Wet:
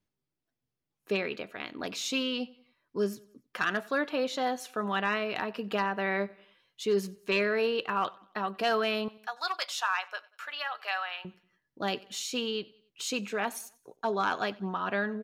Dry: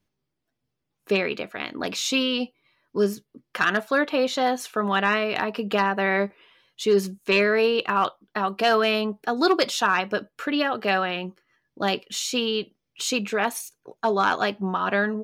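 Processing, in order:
0:09.08–0:11.25: high-pass filter 790 Hz 24 dB per octave
repeating echo 93 ms, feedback 44%, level −23 dB
level −7.5 dB

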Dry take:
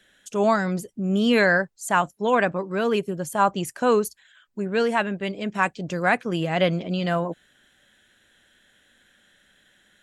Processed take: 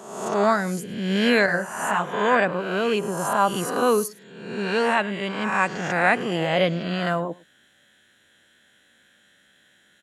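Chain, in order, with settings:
peak hold with a rise ahead of every peak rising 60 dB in 0.96 s
high-pass filter 85 Hz
single-tap delay 107 ms −22.5 dB
0:01.46–0:02.13: micro pitch shift up and down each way 54 cents
level −1.5 dB

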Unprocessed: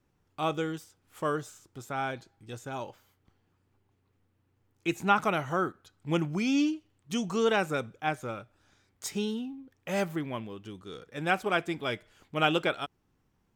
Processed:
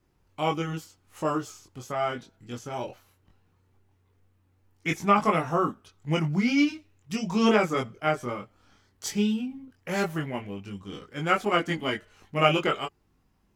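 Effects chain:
formants moved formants −2 semitones
multi-voice chorus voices 4, 0.16 Hz, delay 22 ms, depth 2.8 ms
level +7 dB

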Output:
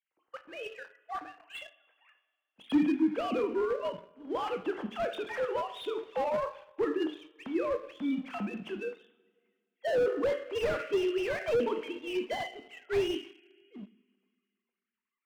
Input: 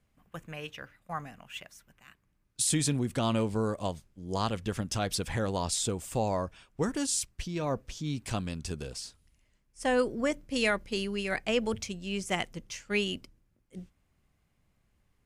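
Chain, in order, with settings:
three sine waves on the formant tracks
coupled-rooms reverb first 0.52 s, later 2.1 s, from −18 dB, DRR 5 dB
leveller curve on the samples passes 1
slew-rate limiting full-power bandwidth 47 Hz
level −3.5 dB

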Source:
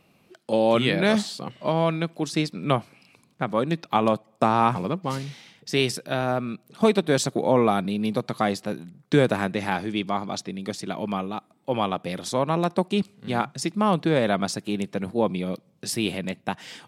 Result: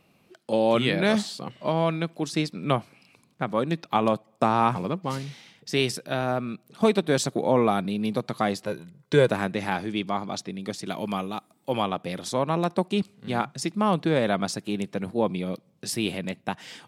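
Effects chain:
0:08.65–0:09.29: comb filter 2 ms, depth 55%
0:10.86–0:11.82: high-shelf EQ 4,800 Hz +12 dB
level −1.5 dB

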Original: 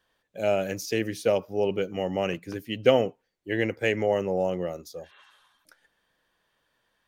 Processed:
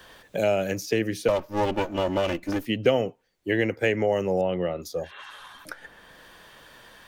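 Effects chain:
0:01.28–0:02.66: lower of the sound and its delayed copy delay 3.4 ms
0:04.41–0:04.82: elliptic low-pass filter 3,700 Hz, stop band 40 dB
multiband upward and downward compressor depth 70%
level +2 dB

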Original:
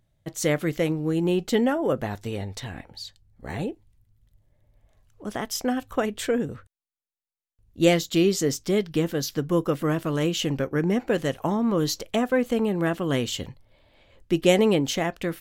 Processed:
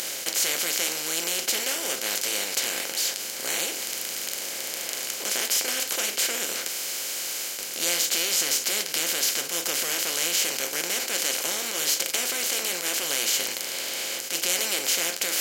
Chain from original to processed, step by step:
compressor on every frequency bin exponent 0.2
flanger 0.83 Hz, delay 5.5 ms, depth 6.7 ms, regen −46%
reversed playback
upward compression, threshold −20 dBFS
reversed playback
first difference
boost into a limiter +13 dB
level −7.5 dB

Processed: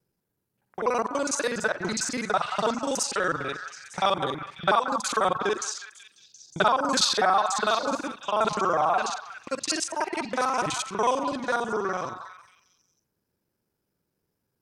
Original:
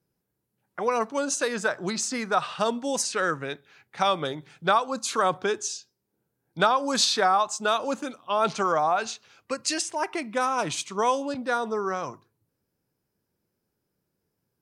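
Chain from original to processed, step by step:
reversed piece by piece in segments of 41 ms
echo through a band-pass that steps 181 ms, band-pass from 1,100 Hz, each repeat 0.7 octaves, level −6.5 dB

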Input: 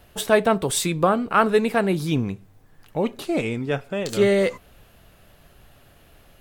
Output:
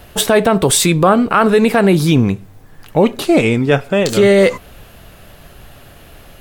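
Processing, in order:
boost into a limiter +13.5 dB
level −1 dB

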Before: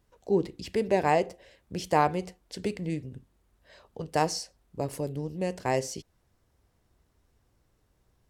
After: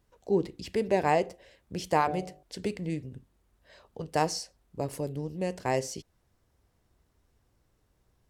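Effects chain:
0:01.96–0:02.43: hum removal 49.53 Hz, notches 15
level −1 dB

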